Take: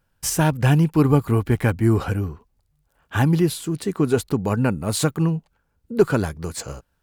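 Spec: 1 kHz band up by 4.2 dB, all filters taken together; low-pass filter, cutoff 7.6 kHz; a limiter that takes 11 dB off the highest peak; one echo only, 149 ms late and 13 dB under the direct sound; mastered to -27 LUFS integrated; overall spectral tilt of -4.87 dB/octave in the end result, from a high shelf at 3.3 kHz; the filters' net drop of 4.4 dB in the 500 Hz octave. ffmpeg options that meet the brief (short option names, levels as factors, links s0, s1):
-af "lowpass=7600,equalizer=f=500:t=o:g=-7.5,equalizer=f=1000:t=o:g=6.5,highshelf=f=3300:g=8.5,alimiter=limit=0.158:level=0:latency=1,aecho=1:1:149:0.224,volume=0.891"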